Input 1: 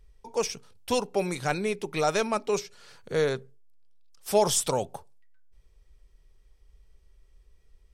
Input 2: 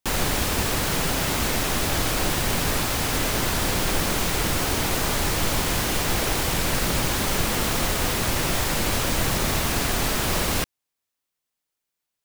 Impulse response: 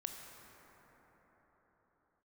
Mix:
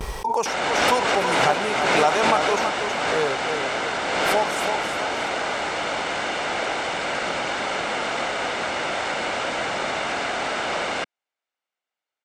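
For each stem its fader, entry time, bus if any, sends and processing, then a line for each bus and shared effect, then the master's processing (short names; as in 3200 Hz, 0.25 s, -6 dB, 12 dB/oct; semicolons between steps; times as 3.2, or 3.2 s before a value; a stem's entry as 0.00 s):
4.19 s -1.5 dB -> 4.57 s -13 dB, 0.00 s, no send, echo send -6 dB, gate with hold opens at -55 dBFS; bell 920 Hz +12.5 dB 0.97 oct
+2.5 dB, 0.40 s, no send, no echo send, steep low-pass 8700 Hz 72 dB/oct; three-band isolator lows -18 dB, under 270 Hz, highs -14 dB, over 3200 Hz; comb 1.4 ms, depth 34%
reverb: off
echo: feedback echo 0.325 s, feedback 41%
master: HPF 190 Hz 6 dB/oct; backwards sustainer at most 24 dB/s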